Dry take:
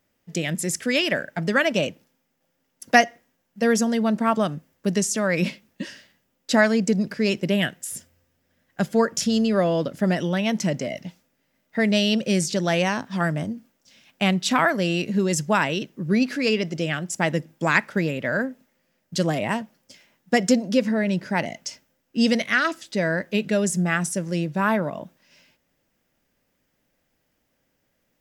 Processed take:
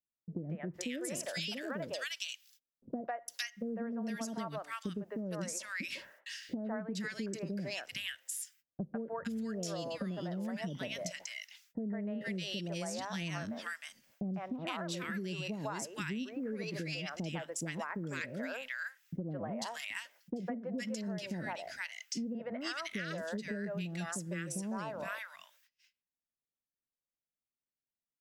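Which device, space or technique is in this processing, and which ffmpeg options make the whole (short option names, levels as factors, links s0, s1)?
serial compression, peaks first: -filter_complex "[0:a]agate=range=0.0251:threshold=0.00224:ratio=16:detection=peak,asettb=1/sr,asplit=3[s0][s1][s2];[s0]atrim=end=0.774[s3];[s1]atrim=start=0.77:end=2.97,asetpts=PTS-STARTPTS,afade=t=in:d=0.004:c=qsin,afade=t=out:st=2.196:d=0.004:c=qsin,highshelf=f=2800:t=q:w=1.5:g=7[s4];[s2]atrim=start=2.966[s5];[s3][s4]acrossfade=d=0.004:c1=hsin:c2=qsin[s6];[s6][s5]acrossfade=d=0.004:c1=qsin:c2=hsin,acrossover=split=500|1500[s7][s8][s9];[s8]adelay=150[s10];[s9]adelay=460[s11];[s7][s10][s11]amix=inputs=3:normalize=0,acompressor=threshold=0.0316:ratio=6,acompressor=threshold=0.00708:ratio=1.5,volume=0.891"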